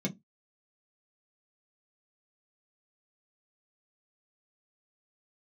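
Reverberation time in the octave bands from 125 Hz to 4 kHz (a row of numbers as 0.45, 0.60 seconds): 0.20, 0.25, 0.15, 0.15, 0.10, 0.10 seconds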